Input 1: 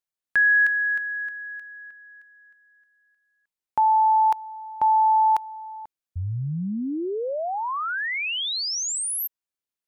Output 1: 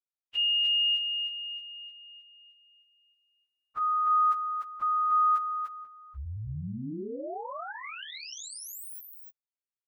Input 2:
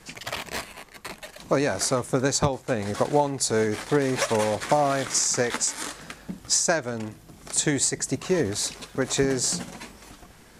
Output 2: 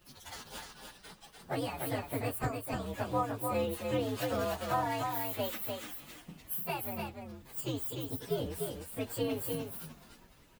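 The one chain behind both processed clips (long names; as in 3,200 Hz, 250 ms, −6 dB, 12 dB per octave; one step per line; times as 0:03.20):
partials spread apart or drawn together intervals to 128%
single-tap delay 297 ms −4.5 dB
level −8.5 dB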